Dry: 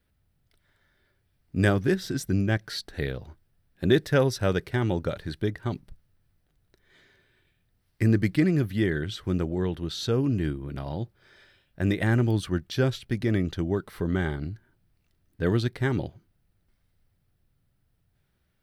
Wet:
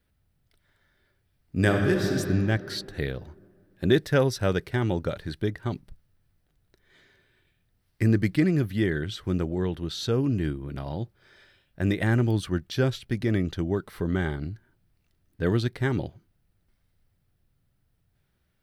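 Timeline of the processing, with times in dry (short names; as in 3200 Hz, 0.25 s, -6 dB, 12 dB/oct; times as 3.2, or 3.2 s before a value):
1.56–2.12 reverb throw, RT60 2.7 s, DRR 2 dB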